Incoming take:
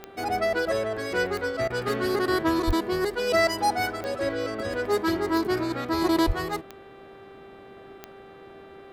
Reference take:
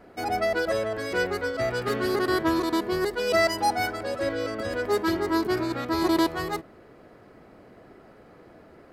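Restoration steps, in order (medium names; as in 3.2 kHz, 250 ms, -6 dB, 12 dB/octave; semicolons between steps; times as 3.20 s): de-click; de-hum 392.1 Hz, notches 10; 2.66–2.78 s: high-pass 140 Hz 24 dB/octave; 6.26–6.38 s: high-pass 140 Hz 24 dB/octave; interpolate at 1.68 s, 20 ms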